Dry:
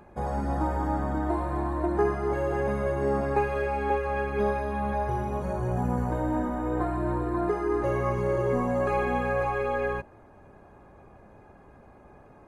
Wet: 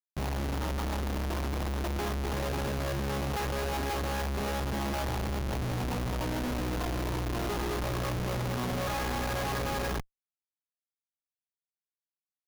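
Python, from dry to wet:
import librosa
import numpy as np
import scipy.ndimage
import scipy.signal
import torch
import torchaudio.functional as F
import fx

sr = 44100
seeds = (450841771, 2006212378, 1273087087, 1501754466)

y = fx.peak_eq(x, sr, hz=390.0, db=fx.steps((0.0, -8.5), (7.8, -14.5)), octaves=1.1)
y = fx.schmitt(y, sr, flips_db=-34.0)
y = fx.peak_eq(y, sr, hz=8100.0, db=-5.0, octaves=0.21)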